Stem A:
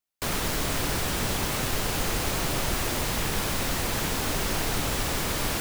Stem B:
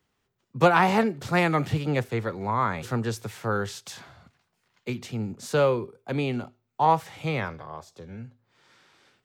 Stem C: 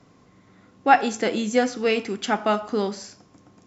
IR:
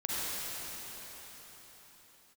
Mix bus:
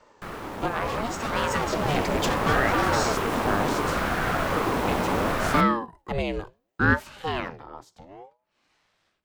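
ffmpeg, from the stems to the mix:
-filter_complex "[0:a]acrossover=split=3000[a][b];[b]acompressor=threshold=-41dB:ratio=4:attack=1:release=60[c];[a][c]amix=inputs=2:normalize=0,equalizer=f=700:t=o:w=1.5:g=12,volume=-9dB[d];[1:a]volume=-7.5dB[e];[2:a]acompressor=threshold=-21dB:ratio=6,asoftclip=type=tanh:threshold=-31dB,volume=1.5dB[f];[d][e][f]amix=inputs=3:normalize=0,dynaudnorm=f=310:g=11:m=11dB,aeval=exprs='val(0)*sin(2*PI*470*n/s+470*0.6/0.71*sin(2*PI*0.71*n/s))':c=same"

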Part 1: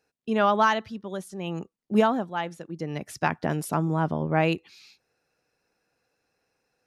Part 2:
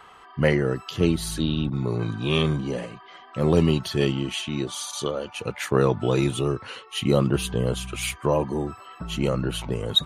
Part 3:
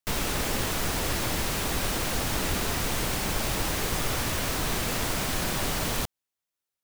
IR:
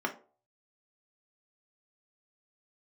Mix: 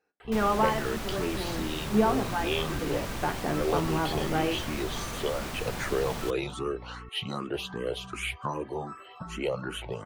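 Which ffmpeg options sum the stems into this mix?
-filter_complex "[0:a]acontrast=73,deesser=0.75,volume=-15dB,asplit=2[a][b];[b]volume=-4.5dB[c];[1:a]acrossover=split=420|3800[d][e][f];[d]acompressor=threshold=-36dB:ratio=4[g];[e]acompressor=threshold=-27dB:ratio=4[h];[f]acompressor=threshold=-37dB:ratio=4[i];[g][h][i]amix=inputs=3:normalize=0,asplit=2[j][k];[k]afreqshift=2.6[l];[j][l]amix=inputs=2:normalize=1,adelay=200,volume=0dB,asplit=2[m][n];[n]volume=-18dB[o];[2:a]aeval=exprs='val(0)+0.0141*(sin(2*PI*60*n/s)+sin(2*PI*2*60*n/s)/2+sin(2*PI*3*60*n/s)/3+sin(2*PI*4*60*n/s)/4+sin(2*PI*5*60*n/s)/5)':c=same,adelay=250,volume=-6.5dB[p];[3:a]atrim=start_sample=2205[q];[c][o]amix=inputs=2:normalize=0[r];[r][q]afir=irnorm=-1:irlink=0[s];[a][m][p][s]amix=inputs=4:normalize=0,highshelf=f=4.7k:g=-7"

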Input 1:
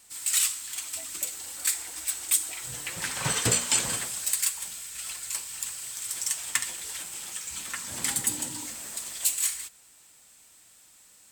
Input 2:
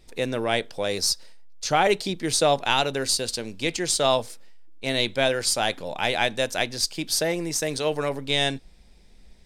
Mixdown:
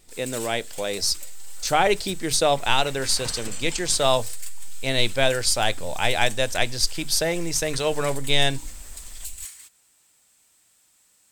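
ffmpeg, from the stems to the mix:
-filter_complex "[0:a]alimiter=limit=-18dB:level=0:latency=1:release=316,volume=-5.5dB[a];[1:a]bandreject=f=50:t=h:w=6,bandreject=f=100:t=h:w=6,bandreject=f=150:t=h:w=6,asubboost=boost=5:cutoff=94,dynaudnorm=f=300:g=7:m=7dB,volume=-2.5dB[b];[a][b]amix=inputs=2:normalize=0"

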